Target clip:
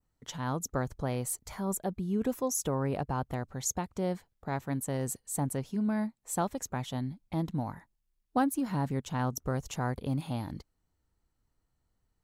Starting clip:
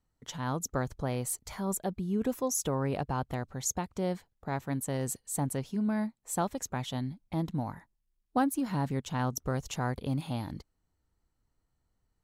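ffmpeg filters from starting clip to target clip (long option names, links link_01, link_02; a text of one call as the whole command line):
ffmpeg -i in.wav -af "adynamicequalizer=threshold=0.00282:dfrequency=3600:dqfactor=0.84:tfrequency=3600:tqfactor=0.84:attack=5:release=100:ratio=0.375:range=2.5:mode=cutabove:tftype=bell" out.wav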